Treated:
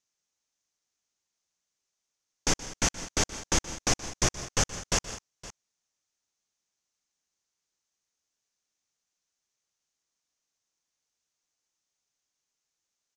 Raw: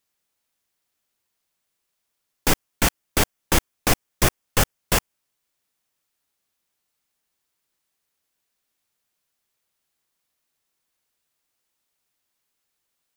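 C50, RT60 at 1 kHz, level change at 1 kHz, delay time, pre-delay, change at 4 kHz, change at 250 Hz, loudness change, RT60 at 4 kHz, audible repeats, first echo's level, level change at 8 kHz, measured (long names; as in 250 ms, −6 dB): no reverb audible, no reverb audible, −8.0 dB, 124 ms, no reverb audible, −4.5 dB, −7.5 dB, −6.0 dB, no reverb audible, 3, −18.0 dB, −1.5 dB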